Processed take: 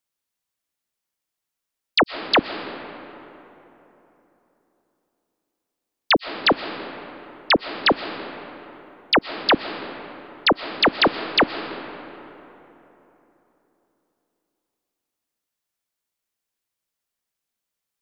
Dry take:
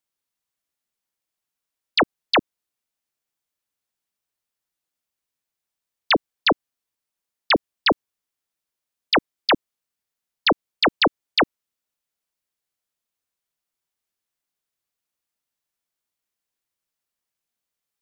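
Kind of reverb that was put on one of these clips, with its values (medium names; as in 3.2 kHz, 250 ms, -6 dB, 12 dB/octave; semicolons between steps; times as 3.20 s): algorithmic reverb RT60 3.5 s, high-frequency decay 0.5×, pre-delay 85 ms, DRR 10.5 dB; trim +1 dB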